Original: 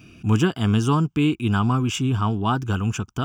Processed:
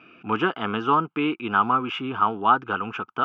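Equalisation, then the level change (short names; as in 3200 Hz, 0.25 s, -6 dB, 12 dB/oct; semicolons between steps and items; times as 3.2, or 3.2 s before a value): speaker cabinet 350–3000 Hz, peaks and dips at 500 Hz +4 dB, 860 Hz +5 dB, 1300 Hz +10 dB, 2200 Hz +3 dB; 0.0 dB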